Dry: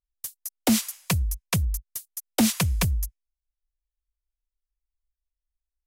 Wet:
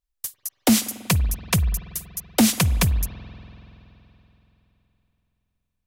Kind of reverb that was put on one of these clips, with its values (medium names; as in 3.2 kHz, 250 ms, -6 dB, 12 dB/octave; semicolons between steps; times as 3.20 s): spring tank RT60 3.5 s, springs 47 ms, chirp 30 ms, DRR 14.5 dB; trim +4 dB